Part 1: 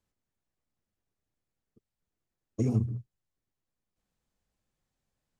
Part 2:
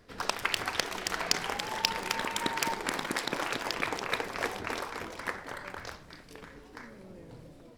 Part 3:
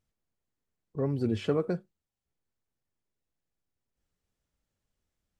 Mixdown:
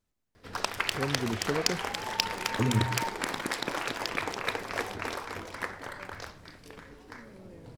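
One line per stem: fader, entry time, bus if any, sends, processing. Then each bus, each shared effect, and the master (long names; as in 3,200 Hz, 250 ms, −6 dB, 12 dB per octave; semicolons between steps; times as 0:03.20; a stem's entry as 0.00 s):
0.0 dB, 0.00 s, no send, no processing
0.0 dB, 0.35 s, no send, parametric band 97 Hz +8.5 dB 0.23 octaves
−3.5 dB, 0.00 s, no send, no processing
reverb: not used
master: no processing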